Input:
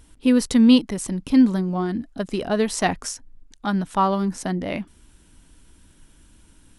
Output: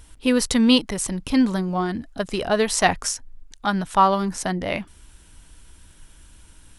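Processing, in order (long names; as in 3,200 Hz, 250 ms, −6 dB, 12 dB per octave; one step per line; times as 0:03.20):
parametric band 250 Hz −8.5 dB 1.5 octaves
level +5 dB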